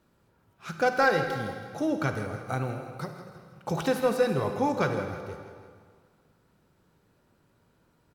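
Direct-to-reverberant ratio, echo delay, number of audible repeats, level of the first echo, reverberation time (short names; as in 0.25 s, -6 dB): 5.0 dB, 0.163 s, 4, -13.0 dB, 1.8 s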